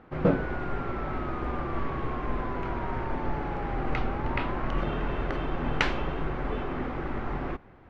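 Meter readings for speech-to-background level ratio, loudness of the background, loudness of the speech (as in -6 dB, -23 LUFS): 9.5 dB, -41.5 LUFS, -32.0 LUFS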